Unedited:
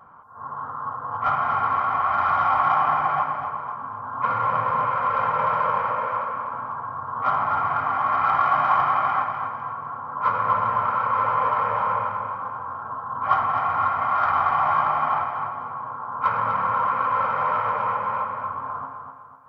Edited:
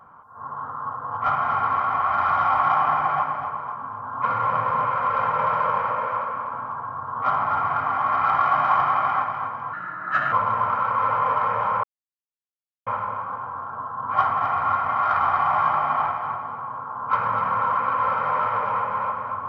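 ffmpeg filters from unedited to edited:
-filter_complex "[0:a]asplit=4[s0][s1][s2][s3];[s0]atrim=end=9.734[s4];[s1]atrim=start=9.73:end=10.48,asetpts=PTS-STARTPTS,asetrate=55566,aresample=44100[s5];[s2]atrim=start=10.476:end=11.99,asetpts=PTS-STARTPTS,afade=t=out:st=1.51:d=0.004:c=hsin,apad=pad_dur=1.03[s6];[s3]atrim=start=11.99,asetpts=PTS-STARTPTS,afade=t=in:d=0.004:c=hsin[s7];[s4][s5]acrossfade=d=0.004:c1=hsin:c2=hsin[s8];[s6][s7]concat=n=2:v=0:a=1[s9];[s8][s9]acrossfade=d=0.004:c1=hsin:c2=hsin"

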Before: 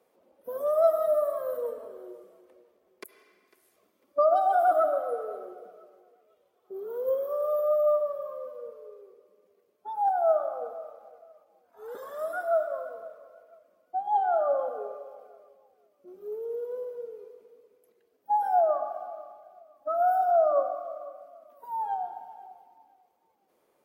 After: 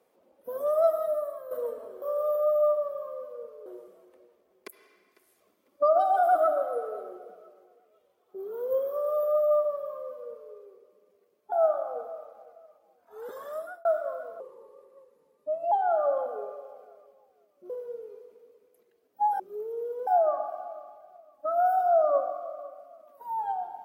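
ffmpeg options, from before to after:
-filter_complex "[0:a]asplit=11[s0][s1][s2][s3][s4][s5][s6][s7][s8][s9][s10];[s0]atrim=end=1.51,asetpts=PTS-STARTPTS,afade=t=out:st=0.72:d=0.79:silence=0.281838[s11];[s1]atrim=start=1.51:end=2.022,asetpts=PTS-STARTPTS,afade=t=in:d=0.004:c=hsin:silence=0.281838[s12];[s2]atrim=start=7.258:end=8.902[s13];[s3]atrim=start=2.018:end=9.882[s14];[s4]atrim=start=10.178:end=12.51,asetpts=PTS-STARTPTS,afade=t=out:st=1.952:d=0.38[s15];[s5]atrim=start=12.51:end=13.064,asetpts=PTS-STARTPTS,afade=t=in:d=0.004:c=hsin[s16];[s6]atrim=start=13.06:end=14.14,asetpts=PTS-STARTPTS,asetrate=36162,aresample=44100[s17];[s7]atrim=start=14.136:end=16.122[s18];[s8]atrim=start=16.788:end=18.492[s19];[s9]atrim=start=16.118:end=16.792[s20];[s10]atrim=start=18.488[s21];[s11][s12]concat=n=2:v=0:a=1[s22];[s22][s13]acrossfade=d=0.004:c1=hsin:c2=hsin[s23];[s23][s14]acrossfade=d=0.004:c1=hsin:c2=hsin[s24];[s15][s16]concat=n=2:v=0:a=1[s25];[s24][s25]acrossfade=d=0.004:c1=hsin:c2=hsin[s26];[s26][s17]acrossfade=d=0.004:c1=hsin:c2=hsin[s27];[s27][s18]acrossfade=d=0.004:c1=hsin:c2=hsin[s28];[s28][s19]acrossfade=d=0.004:c1=hsin:c2=hsin[s29];[s29][s20]acrossfade=d=0.004:c1=hsin:c2=hsin[s30];[s30][s21]acrossfade=d=0.004:c1=hsin:c2=hsin"

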